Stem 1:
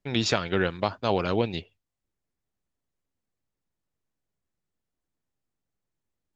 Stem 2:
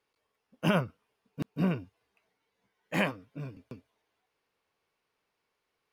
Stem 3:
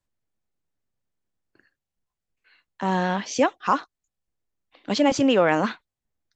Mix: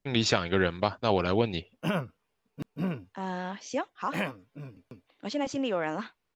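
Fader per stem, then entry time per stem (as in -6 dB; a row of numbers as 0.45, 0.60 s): -0.5, -3.0, -11.0 dB; 0.00, 1.20, 0.35 s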